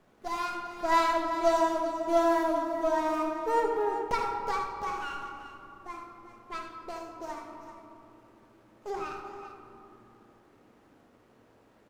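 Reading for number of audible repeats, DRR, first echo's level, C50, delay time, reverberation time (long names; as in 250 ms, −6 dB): 2, 1.0 dB, −7.5 dB, 2.0 dB, 77 ms, 2.6 s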